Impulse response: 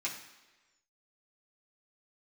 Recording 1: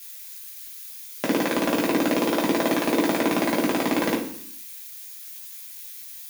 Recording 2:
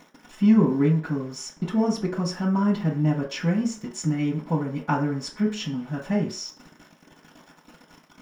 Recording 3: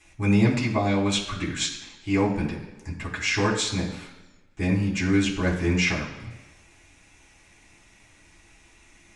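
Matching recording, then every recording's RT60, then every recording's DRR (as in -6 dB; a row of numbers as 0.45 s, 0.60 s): 3; 0.65 s, 0.45 s, 1.2 s; -3.0 dB, -10.0 dB, -6.0 dB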